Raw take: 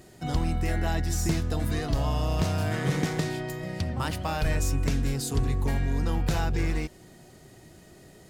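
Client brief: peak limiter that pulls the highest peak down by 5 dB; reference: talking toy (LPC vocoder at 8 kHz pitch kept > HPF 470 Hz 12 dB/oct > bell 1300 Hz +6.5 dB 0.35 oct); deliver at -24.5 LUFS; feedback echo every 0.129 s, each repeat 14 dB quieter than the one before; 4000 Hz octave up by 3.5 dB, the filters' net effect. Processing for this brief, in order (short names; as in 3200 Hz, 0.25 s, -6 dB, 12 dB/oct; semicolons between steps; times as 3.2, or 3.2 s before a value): bell 4000 Hz +4.5 dB; limiter -19 dBFS; feedback echo 0.129 s, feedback 20%, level -14 dB; LPC vocoder at 8 kHz pitch kept; HPF 470 Hz 12 dB/oct; bell 1300 Hz +6.5 dB 0.35 oct; gain +11 dB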